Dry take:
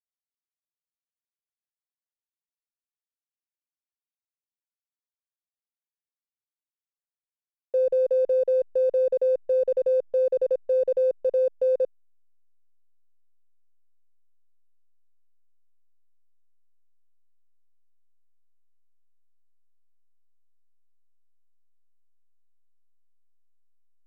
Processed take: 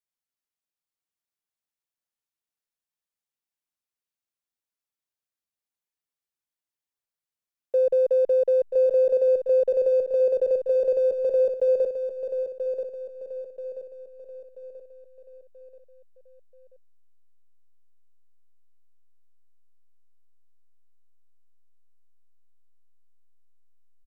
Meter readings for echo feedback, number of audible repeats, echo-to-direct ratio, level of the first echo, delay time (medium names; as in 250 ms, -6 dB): 44%, 4, -6.5 dB, -7.5 dB, 983 ms